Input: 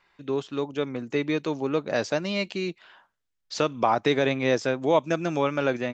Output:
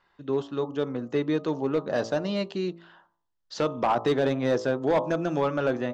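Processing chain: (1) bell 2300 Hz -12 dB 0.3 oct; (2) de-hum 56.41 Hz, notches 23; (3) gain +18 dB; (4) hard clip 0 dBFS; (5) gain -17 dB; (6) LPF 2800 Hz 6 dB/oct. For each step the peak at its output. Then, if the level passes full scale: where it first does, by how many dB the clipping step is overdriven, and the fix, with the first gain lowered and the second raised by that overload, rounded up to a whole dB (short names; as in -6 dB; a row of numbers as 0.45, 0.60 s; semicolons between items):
-9.5, -9.0, +9.0, 0.0, -17.0, -17.0 dBFS; step 3, 9.0 dB; step 3 +9 dB, step 5 -8 dB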